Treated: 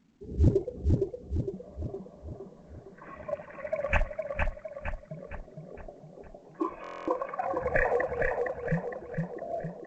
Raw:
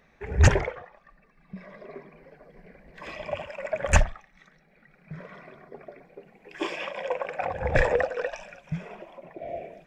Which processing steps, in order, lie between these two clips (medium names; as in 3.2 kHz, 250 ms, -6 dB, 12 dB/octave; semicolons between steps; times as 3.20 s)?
hum notches 50/100 Hz; spectral noise reduction 10 dB; graphic EQ 125/250/4000 Hz +4/+7/-12 dB; compression 1.5:1, threshold -34 dBFS, peak gain reduction 9 dB; LFO low-pass saw up 0.24 Hz 270–2800 Hz; filtered feedback delay 461 ms, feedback 52%, low-pass 2.9 kHz, level -3 dB; buffer glitch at 6.82 s, samples 1024, times 10; A-law 128 kbps 16 kHz